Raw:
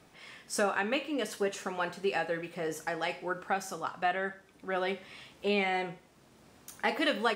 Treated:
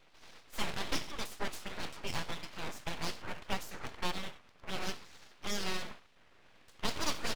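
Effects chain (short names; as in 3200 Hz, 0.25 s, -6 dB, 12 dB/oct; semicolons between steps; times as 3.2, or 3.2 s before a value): low-pass opened by the level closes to 2300 Hz, open at -25.5 dBFS; high shelf 2500 Hz -8 dB; speakerphone echo 90 ms, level -20 dB; spectral gate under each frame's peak -10 dB weak; full-wave rectifier; dynamic EQ 1800 Hz, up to -4 dB, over -52 dBFS, Q 0.72; gain +7.5 dB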